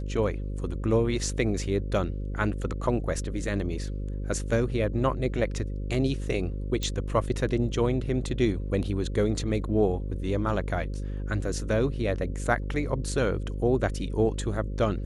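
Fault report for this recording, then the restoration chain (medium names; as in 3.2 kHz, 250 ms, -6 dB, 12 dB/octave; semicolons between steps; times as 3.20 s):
buzz 50 Hz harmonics 11 -32 dBFS
6.83 s: pop -17 dBFS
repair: de-click; de-hum 50 Hz, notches 11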